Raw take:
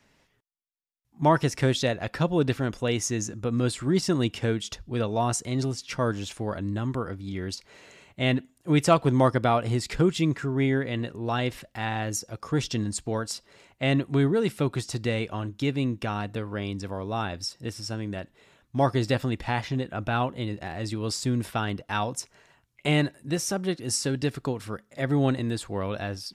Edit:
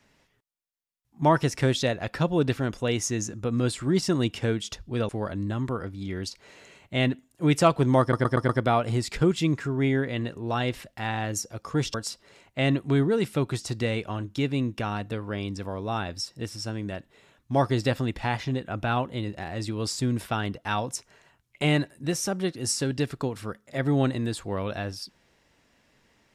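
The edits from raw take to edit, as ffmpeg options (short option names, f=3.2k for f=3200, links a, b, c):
-filter_complex "[0:a]asplit=7[a][b][c][d][e][f][g];[a]atrim=end=5.092[h];[b]atrim=start=6.348:end=9.392[i];[c]atrim=start=9.268:end=9.392[j];[d]atrim=start=9.268:end=9.392[k];[e]atrim=start=9.268:end=9.392[l];[f]atrim=start=9.268:end=12.722[m];[g]atrim=start=13.178[n];[h][i]acrossfade=d=0.004:c1=hsin:c2=hsin[o];[o][j]acrossfade=d=0.004:c1=hsin:c2=hsin[p];[p][k]acrossfade=d=0.004:c1=hsin:c2=hsin[q];[q][l]acrossfade=d=0.004:c1=hsin:c2=hsin[r];[r][m]acrossfade=d=0.004:c1=hsin:c2=hsin[s];[s][n]acrossfade=d=0.004:c1=hsin:c2=hsin"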